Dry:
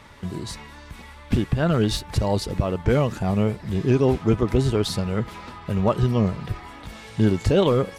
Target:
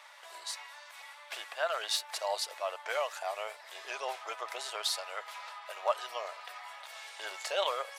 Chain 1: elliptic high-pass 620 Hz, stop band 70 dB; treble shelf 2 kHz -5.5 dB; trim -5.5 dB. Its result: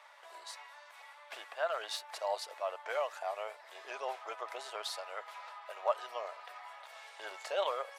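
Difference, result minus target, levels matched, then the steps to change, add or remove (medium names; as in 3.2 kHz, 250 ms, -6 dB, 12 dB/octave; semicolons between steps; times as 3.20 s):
4 kHz band -4.5 dB
change: treble shelf 2 kHz +4.5 dB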